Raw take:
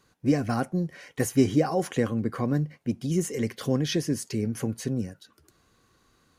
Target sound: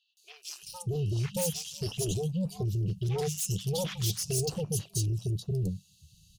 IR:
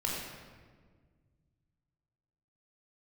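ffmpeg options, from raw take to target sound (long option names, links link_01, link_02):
-filter_complex "[0:a]afftfilt=real='re*(1-between(b*sr/4096,200,2600))':imag='im*(1-between(b*sr/4096,200,2600))':win_size=4096:overlap=0.75,aeval=exprs='0.112*sin(PI/2*3.98*val(0)/0.112)':channel_layout=same,acrossover=split=970|3100[link_01][link_02][link_03];[link_03]adelay=170[link_04];[link_01]adelay=630[link_05];[link_05][link_02][link_04]amix=inputs=3:normalize=0,volume=-7.5dB"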